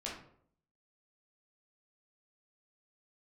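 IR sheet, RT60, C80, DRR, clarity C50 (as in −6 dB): 0.65 s, 8.5 dB, −5.0 dB, 3.5 dB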